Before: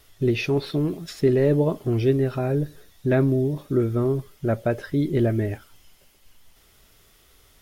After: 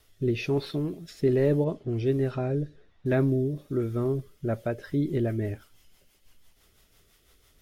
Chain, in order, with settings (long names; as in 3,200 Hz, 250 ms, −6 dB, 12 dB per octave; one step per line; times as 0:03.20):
0:01.64–0:03.06: low-pass that shuts in the quiet parts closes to 1,700 Hz, open at −16 dBFS
rotating-speaker cabinet horn 1.2 Hz, later 6 Hz, at 0:04.31
level −3.5 dB